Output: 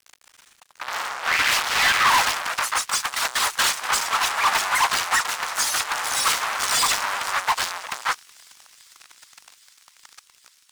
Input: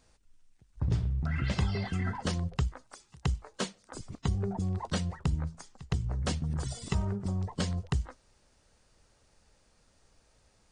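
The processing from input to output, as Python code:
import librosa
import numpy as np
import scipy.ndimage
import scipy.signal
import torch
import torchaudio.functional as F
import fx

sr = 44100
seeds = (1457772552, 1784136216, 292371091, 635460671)

y = fx.fuzz(x, sr, gain_db=52.0, gate_db=-59.0)
y = fx.echo_pitch(y, sr, ms=157, semitones=2, count=2, db_per_echo=-3.0)
y = scipy.signal.sosfilt(scipy.signal.butter(4, 1000.0, 'highpass', fs=sr, output='sos'), y)
y = fx.leveller(y, sr, passes=3)
y = fx.high_shelf(y, sr, hz=3800.0, db=-5.5)
y = fx.echo_wet_highpass(y, sr, ms=403, feedback_pct=84, hz=3600.0, wet_db=-19)
y = fx.upward_expand(y, sr, threshold_db=-29.0, expansion=1.5)
y = y * 10.0 ** (-6.0 / 20.0)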